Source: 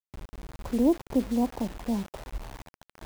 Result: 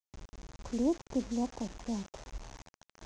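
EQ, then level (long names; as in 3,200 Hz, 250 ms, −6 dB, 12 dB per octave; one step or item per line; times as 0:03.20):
transistor ladder low-pass 7,100 Hz, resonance 60%
+3.5 dB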